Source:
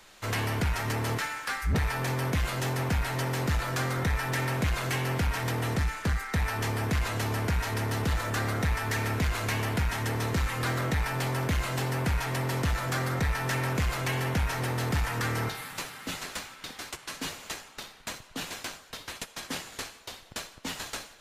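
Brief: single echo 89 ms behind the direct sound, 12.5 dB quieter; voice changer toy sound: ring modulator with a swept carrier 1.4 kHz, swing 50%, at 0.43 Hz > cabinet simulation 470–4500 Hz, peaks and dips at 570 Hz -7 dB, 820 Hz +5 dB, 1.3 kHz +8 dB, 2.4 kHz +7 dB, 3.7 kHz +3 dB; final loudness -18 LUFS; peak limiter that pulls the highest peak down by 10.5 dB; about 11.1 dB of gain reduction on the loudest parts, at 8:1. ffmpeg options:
-af "acompressor=threshold=0.0158:ratio=8,alimiter=level_in=3.35:limit=0.0631:level=0:latency=1,volume=0.299,aecho=1:1:89:0.237,aeval=exprs='val(0)*sin(2*PI*1400*n/s+1400*0.5/0.43*sin(2*PI*0.43*n/s))':c=same,highpass=470,equalizer=f=570:t=q:w=4:g=-7,equalizer=f=820:t=q:w=4:g=5,equalizer=f=1300:t=q:w=4:g=8,equalizer=f=2400:t=q:w=4:g=7,equalizer=f=3700:t=q:w=4:g=3,lowpass=f=4500:w=0.5412,lowpass=f=4500:w=1.3066,volume=11.9"

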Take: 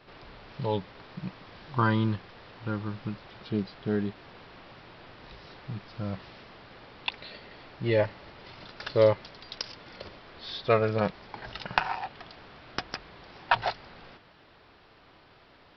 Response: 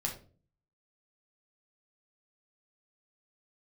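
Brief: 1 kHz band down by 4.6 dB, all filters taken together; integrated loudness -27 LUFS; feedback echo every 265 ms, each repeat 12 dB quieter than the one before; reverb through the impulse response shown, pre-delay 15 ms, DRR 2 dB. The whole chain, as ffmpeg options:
-filter_complex "[0:a]equalizer=f=1000:t=o:g=-6,aecho=1:1:265|530|795:0.251|0.0628|0.0157,asplit=2[s0][s1];[1:a]atrim=start_sample=2205,adelay=15[s2];[s1][s2]afir=irnorm=-1:irlink=0,volume=0.596[s3];[s0][s3]amix=inputs=2:normalize=0,volume=1.41"

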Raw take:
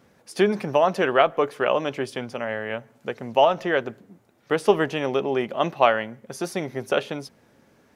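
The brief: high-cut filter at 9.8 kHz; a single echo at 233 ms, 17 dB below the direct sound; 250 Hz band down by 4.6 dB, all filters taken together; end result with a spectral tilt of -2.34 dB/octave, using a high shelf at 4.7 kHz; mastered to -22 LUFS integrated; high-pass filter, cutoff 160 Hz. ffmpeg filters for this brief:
-af "highpass=160,lowpass=9800,equalizer=f=250:t=o:g=-6,highshelf=f=4700:g=-5,aecho=1:1:233:0.141,volume=1.41"

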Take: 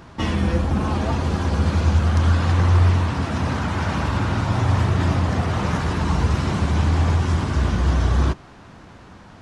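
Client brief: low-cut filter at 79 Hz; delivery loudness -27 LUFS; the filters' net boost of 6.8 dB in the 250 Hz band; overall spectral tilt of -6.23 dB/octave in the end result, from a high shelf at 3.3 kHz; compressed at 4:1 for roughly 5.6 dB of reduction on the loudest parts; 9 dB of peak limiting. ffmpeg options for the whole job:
-af "highpass=79,equalizer=f=250:t=o:g=9,highshelf=f=3300:g=5.5,acompressor=threshold=0.112:ratio=4,volume=1.12,alimiter=limit=0.119:level=0:latency=1"

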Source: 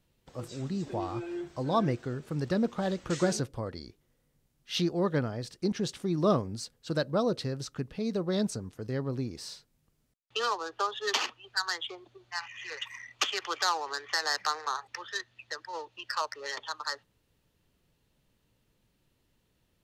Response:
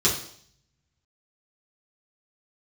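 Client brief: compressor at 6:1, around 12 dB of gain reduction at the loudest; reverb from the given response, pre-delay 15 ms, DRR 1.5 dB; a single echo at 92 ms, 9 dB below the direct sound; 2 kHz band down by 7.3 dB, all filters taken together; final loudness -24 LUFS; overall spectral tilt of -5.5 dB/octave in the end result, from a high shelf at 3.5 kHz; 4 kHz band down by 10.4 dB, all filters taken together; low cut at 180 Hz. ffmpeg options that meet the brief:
-filter_complex "[0:a]highpass=180,equalizer=f=2000:t=o:g=-6.5,highshelf=f=3500:g=-7.5,equalizer=f=4000:t=o:g=-6,acompressor=threshold=0.0178:ratio=6,aecho=1:1:92:0.355,asplit=2[s0][s1];[1:a]atrim=start_sample=2205,adelay=15[s2];[s1][s2]afir=irnorm=-1:irlink=0,volume=0.168[s3];[s0][s3]amix=inputs=2:normalize=0,volume=4.47"

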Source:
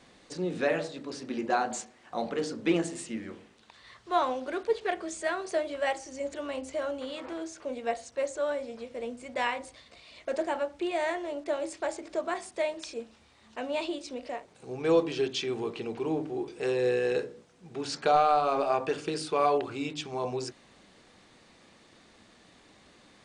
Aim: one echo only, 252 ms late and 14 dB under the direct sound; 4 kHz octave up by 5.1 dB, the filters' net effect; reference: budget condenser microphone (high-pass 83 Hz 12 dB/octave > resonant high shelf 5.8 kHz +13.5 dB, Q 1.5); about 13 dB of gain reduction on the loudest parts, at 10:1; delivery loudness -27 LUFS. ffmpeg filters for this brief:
-af "equalizer=f=4000:t=o:g=8,acompressor=threshold=0.0251:ratio=10,highpass=83,highshelf=f=5800:t=q:w=1.5:g=13.5,aecho=1:1:252:0.2,volume=2.37"

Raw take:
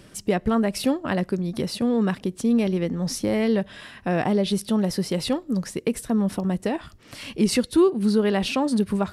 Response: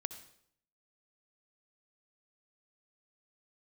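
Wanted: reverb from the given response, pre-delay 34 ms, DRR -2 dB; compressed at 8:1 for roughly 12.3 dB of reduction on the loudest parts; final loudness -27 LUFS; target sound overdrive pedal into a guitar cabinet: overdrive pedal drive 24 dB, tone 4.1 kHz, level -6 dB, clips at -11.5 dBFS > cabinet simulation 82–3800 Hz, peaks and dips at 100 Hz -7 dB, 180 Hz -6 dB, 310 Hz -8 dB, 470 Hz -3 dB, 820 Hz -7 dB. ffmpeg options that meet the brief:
-filter_complex "[0:a]acompressor=threshold=0.0501:ratio=8,asplit=2[s0][s1];[1:a]atrim=start_sample=2205,adelay=34[s2];[s1][s2]afir=irnorm=-1:irlink=0,volume=1.41[s3];[s0][s3]amix=inputs=2:normalize=0,asplit=2[s4][s5];[s5]highpass=f=720:p=1,volume=15.8,asoftclip=type=tanh:threshold=0.266[s6];[s4][s6]amix=inputs=2:normalize=0,lowpass=f=4100:p=1,volume=0.501,highpass=82,equalizer=f=100:t=q:w=4:g=-7,equalizer=f=180:t=q:w=4:g=-6,equalizer=f=310:t=q:w=4:g=-8,equalizer=f=470:t=q:w=4:g=-3,equalizer=f=820:t=q:w=4:g=-7,lowpass=f=3800:w=0.5412,lowpass=f=3800:w=1.3066,volume=0.708"

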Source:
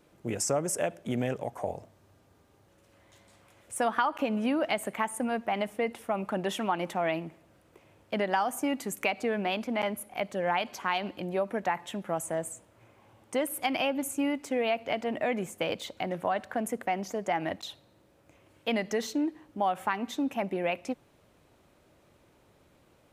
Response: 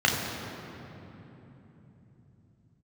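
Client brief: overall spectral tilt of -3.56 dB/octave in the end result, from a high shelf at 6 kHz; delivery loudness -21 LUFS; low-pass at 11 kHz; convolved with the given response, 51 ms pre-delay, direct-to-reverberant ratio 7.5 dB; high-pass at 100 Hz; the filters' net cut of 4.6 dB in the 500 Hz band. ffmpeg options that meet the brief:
-filter_complex "[0:a]highpass=100,lowpass=11000,equalizer=f=500:t=o:g=-6,highshelf=f=6000:g=5,asplit=2[s0][s1];[1:a]atrim=start_sample=2205,adelay=51[s2];[s1][s2]afir=irnorm=-1:irlink=0,volume=0.0631[s3];[s0][s3]amix=inputs=2:normalize=0,volume=3.76"

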